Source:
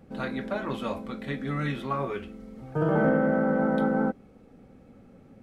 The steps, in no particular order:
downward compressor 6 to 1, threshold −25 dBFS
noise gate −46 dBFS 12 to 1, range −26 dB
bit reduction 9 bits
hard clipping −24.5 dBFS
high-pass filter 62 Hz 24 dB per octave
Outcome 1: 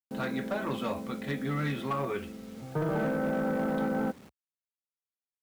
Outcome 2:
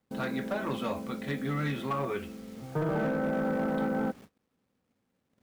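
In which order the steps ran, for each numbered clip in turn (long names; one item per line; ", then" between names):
noise gate, then downward compressor, then bit reduction, then high-pass filter, then hard clipping
high-pass filter, then bit reduction, then downward compressor, then noise gate, then hard clipping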